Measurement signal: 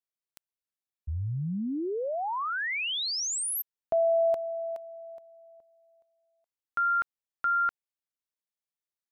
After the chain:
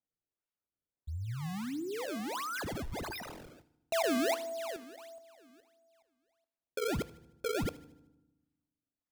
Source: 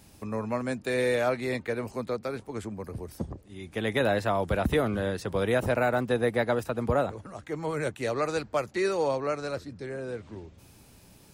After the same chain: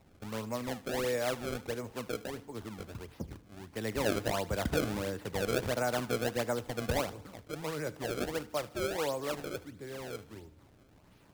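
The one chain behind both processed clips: treble ducked by the level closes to 2800 Hz, closed at -26 dBFS; decimation with a swept rate 27×, swing 160% 1.5 Hz; thinning echo 76 ms, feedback 50%, high-pass 990 Hz, level -17.5 dB; FDN reverb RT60 0.99 s, low-frequency decay 1.45×, high-frequency decay 0.4×, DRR 18 dB; gain -6.5 dB

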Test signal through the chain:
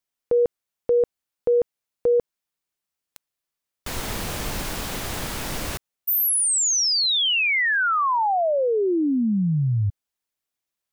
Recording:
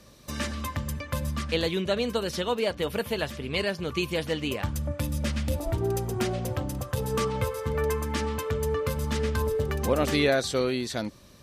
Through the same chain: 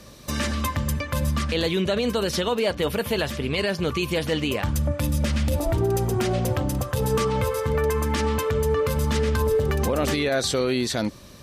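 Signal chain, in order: limiter -22 dBFS; gain +7.5 dB

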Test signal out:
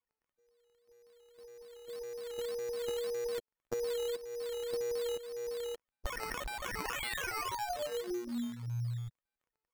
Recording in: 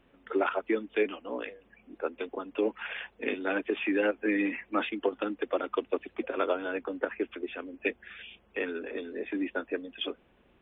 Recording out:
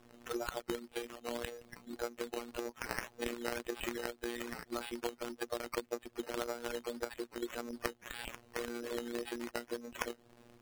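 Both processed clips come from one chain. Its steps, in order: sample sorter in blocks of 8 samples; compressor 6:1, threshold -40 dBFS; robotiser 119 Hz; decimation with a swept rate 10×, swing 60% 1.8 Hz; gain +6 dB

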